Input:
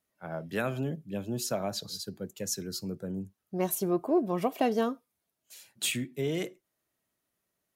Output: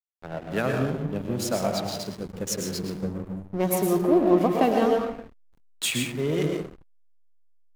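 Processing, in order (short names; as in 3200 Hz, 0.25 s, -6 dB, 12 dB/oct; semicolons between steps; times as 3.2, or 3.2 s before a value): plate-style reverb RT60 1 s, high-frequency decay 0.5×, pre-delay 95 ms, DRR 0.5 dB; backlash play -33.5 dBFS; gain +4.5 dB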